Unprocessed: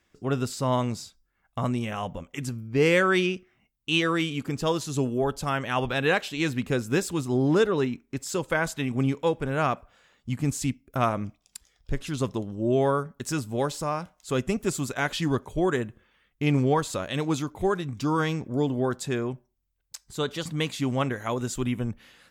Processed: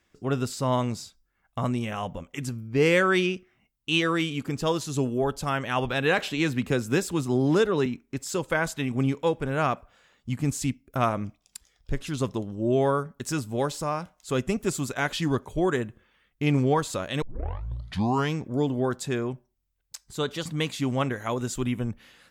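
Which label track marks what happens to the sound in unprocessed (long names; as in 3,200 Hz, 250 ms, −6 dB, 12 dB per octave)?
6.180000	7.860000	multiband upward and downward compressor depth 40%
17.220000	17.220000	tape start 1.12 s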